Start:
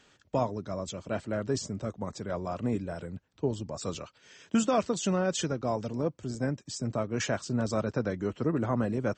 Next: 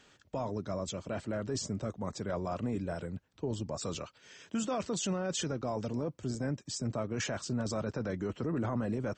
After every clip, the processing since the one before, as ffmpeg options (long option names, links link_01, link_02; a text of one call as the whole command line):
ffmpeg -i in.wav -af "alimiter=level_in=1.5dB:limit=-24dB:level=0:latency=1:release=12,volume=-1.5dB" out.wav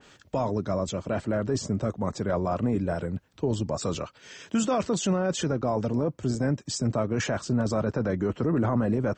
ffmpeg -i in.wav -af "adynamicequalizer=threshold=0.002:dfrequency=2100:dqfactor=0.7:tfrequency=2100:tqfactor=0.7:attack=5:release=100:ratio=0.375:range=4:mode=cutabove:tftype=highshelf,volume=8.5dB" out.wav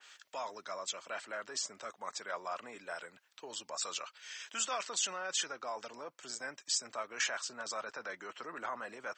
ffmpeg -i in.wav -af "highpass=1400" out.wav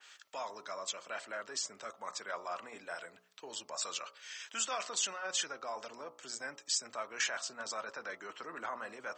ffmpeg -i in.wav -af "bandreject=frequency=60.94:width_type=h:width=4,bandreject=frequency=121.88:width_type=h:width=4,bandreject=frequency=182.82:width_type=h:width=4,bandreject=frequency=243.76:width_type=h:width=4,bandreject=frequency=304.7:width_type=h:width=4,bandreject=frequency=365.64:width_type=h:width=4,bandreject=frequency=426.58:width_type=h:width=4,bandreject=frequency=487.52:width_type=h:width=4,bandreject=frequency=548.46:width_type=h:width=4,bandreject=frequency=609.4:width_type=h:width=4,bandreject=frequency=670.34:width_type=h:width=4,bandreject=frequency=731.28:width_type=h:width=4,bandreject=frequency=792.22:width_type=h:width=4,bandreject=frequency=853.16:width_type=h:width=4,bandreject=frequency=914.1:width_type=h:width=4,bandreject=frequency=975.04:width_type=h:width=4,bandreject=frequency=1035.98:width_type=h:width=4,bandreject=frequency=1096.92:width_type=h:width=4,bandreject=frequency=1157.86:width_type=h:width=4,bandreject=frequency=1218.8:width_type=h:width=4,bandreject=frequency=1279.74:width_type=h:width=4,bandreject=frequency=1340.68:width_type=h:width=4" out.wav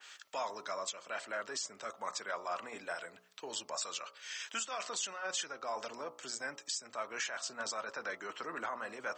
ffmpeg -i in.wav -af "alimiter=level_in=6dB:limit=-24dB:level=0:latency=1:release=403,volume=-6dB,volume=3.5dB" out.wav